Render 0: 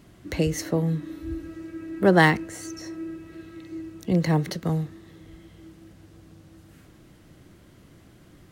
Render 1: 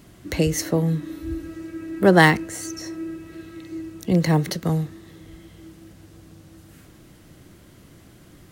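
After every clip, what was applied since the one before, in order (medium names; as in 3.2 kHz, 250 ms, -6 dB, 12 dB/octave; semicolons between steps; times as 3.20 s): treble shelf 5.7 kHz +6 dB; trim +3 dB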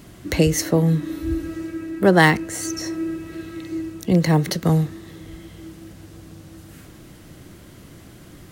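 gain riding within 3 dB 0.5 s; trim +2.5 dB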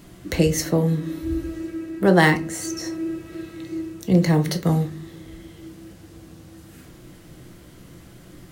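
simulated room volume 160 m³, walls furnished, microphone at 0.76 m; trim -3 dB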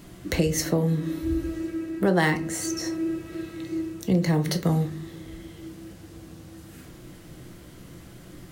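compression 2.5:1, threshold -20 dBFS, peak gain reduction 7 dB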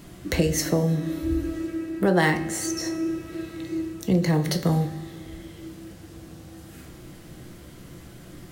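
feedback comb 72 Hz, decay 1.1 s, harmonics all, mix 60%; trim +8 dB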